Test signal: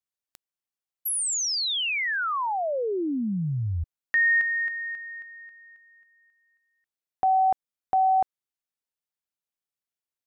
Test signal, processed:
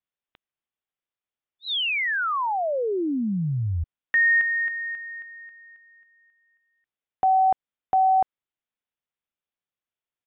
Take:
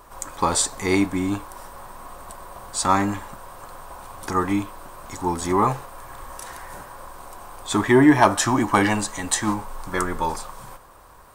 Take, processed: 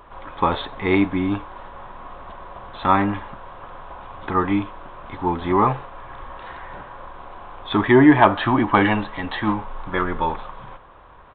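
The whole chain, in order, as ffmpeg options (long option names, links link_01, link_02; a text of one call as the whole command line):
ffmpeg -i in.wav -af "aresample=8000,aresample=44100,volume=2dB" out.wav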